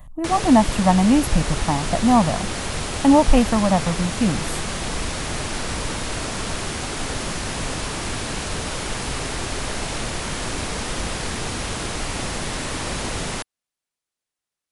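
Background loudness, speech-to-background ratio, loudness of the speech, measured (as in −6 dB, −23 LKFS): −26.5 LKFS, 7.5 dB, −19.0 LKFS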